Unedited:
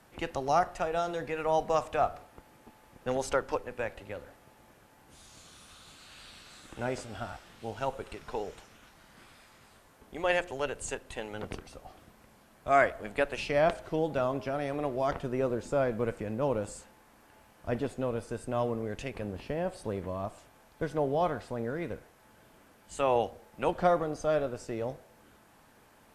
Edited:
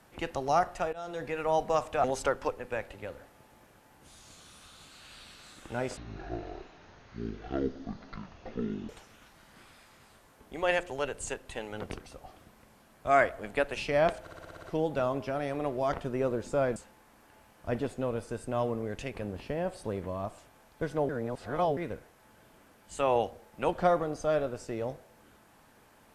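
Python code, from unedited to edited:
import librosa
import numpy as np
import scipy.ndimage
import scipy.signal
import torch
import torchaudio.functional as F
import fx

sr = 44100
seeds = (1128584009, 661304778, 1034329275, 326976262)

y = fx.edit(x, sr, fx.fade_in_from(start_s=0.93, length_s=0.33, floor_db=-19.0),
    fx.cut(start_s=2.04, length_s=1.07),
    fx.speed_span(start_s=7.04, length_s=1.46, speed=0.5),
    fx.stutter(start_s=13.82, slice_s=0.06, count=8),
    fx.cut(start_s=15.95, length_s=0.81),
    fx.reverse_span(start_s=21.09, length_s=0.68), tone=tone)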